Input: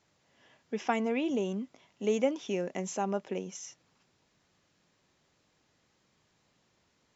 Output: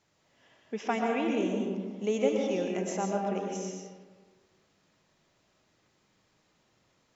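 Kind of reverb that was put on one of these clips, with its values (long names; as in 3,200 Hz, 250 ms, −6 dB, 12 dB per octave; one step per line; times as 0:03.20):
comb and all-pass reverb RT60 1.5 s, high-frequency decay 0.5×, pre-delay 80 ms, DRR 0 dB
level −1 dB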